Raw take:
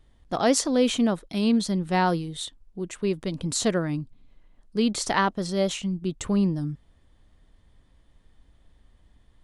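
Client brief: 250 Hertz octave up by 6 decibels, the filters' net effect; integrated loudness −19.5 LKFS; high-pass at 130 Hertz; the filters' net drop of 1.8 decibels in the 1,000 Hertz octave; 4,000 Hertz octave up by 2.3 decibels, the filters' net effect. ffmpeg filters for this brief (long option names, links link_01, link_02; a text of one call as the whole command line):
ffmpeg -i in.wav -af "highpass=130,equalizer=frequency=250:width_type=o:gain=8,equalizer=frequency=1000:width_type=o:gain=-3,equalizer=frequency=4000:width_type=o:gain=3,volume=2dB" out.wav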